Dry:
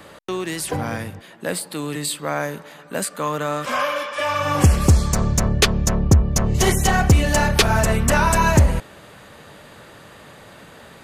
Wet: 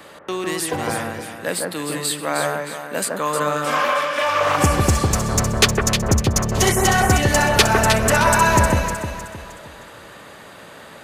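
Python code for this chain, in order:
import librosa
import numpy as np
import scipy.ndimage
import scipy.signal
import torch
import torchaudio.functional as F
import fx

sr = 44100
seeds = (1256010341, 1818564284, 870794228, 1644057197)

y = fx.low_shelf(x, sr, hz=190.0, db=-10.0)
y = fx.echo_alternate(y, sr, ms=155, hz=1800.0, feedback_pct=62, wet_db=-2)
y = fx.doppler_dist(y, sr, depth_ms=0.38, at=(3.76, 4.58))
y = y * 10.0 ** (2.0 / 20.0)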